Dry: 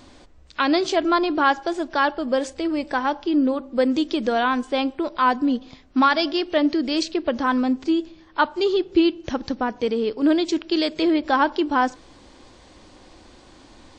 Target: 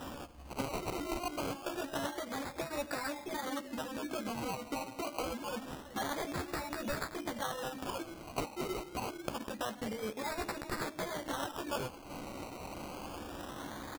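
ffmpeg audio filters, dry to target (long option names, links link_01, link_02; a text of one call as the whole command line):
ffmpeg -i in.wav -filter_complex "[0:a]asettb=1/sr,asplit=3[link_01][link_02][link_03];[link_01]atrim=end=3.074[link_04];[link_02]atrim=start=3.07:end=5.45,asetpts=PTS-STARTPTS,afade=type=in:duration=0.004:curve=qsin,afade=type=out:start_time=2.376:duration=0.004:curve=qsin,lowpass=1200[link_05];[link_03]atrim=start=5.446[link_06];[link_04][link_05]acrossfade=duration=0.004:curve1=hsin:curve2=qsin[link_07];[link_07][link_06]acrossfade=duration=0.004:curve1=qsin:curve2=hsin,asoftclip=type=hard:threshold=-16.5dB,equalizer=frequency=410:width_type=o:width=0.38:gain=-12,afftfilt=real='re*lt(hypot(re,im),0.398)':imag='im*lt(hypot(re,im),0.398)':win_size=1024:overlap=0.75,acompressor=threshold=-42dB:ratio=10,highpass=frequency=170:poles=1,asplit=2[link_08][link_09];[link_09]adelay=14,volume=-4dB[link_10];[link_08][link_10]amix=inputs=2:normalize=0,aecho=1:1:381:0.178,acrusher=samples=20:mix=1:aa=0.000001:lfo=1:lforange=12:lforate=0.26,volume=6dB" out.wav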